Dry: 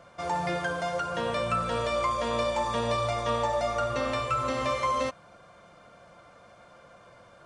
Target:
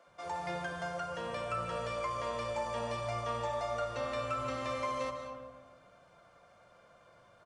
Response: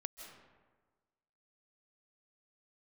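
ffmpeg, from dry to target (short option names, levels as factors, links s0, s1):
-filter_complex "[0:a]asettb=1/sr,asplit=3[s0][s1][s2];[s0]atrim=end=0.774[s3];[s1]atrim=start=0.77:end=3.43,asetpts=PTS-STARTPTS,afade=t=in:d=0.004:c=qsin,afade=t=out:st=2.656:d=0.004:c=qsin,bandreject=f=3700:w=7.5[s4];[s2]atrim=start=3.426[s5];[s3][s4]acrossfade=d=0.004:c1=hsin:c2=qsin[s6];[s6][s5]acrossfade=d=0.004:c1=qsin:c2=hsin,acrossover=split=250[s7][s8];[s7]adelay=70[s9];[s9][s8]amix=inputs=2:normalize=0[s10];[1:a]atrim=start_sample=2205[s11];[s10][s11]afir=irnorm=-1:irlink=0,volume=0.562"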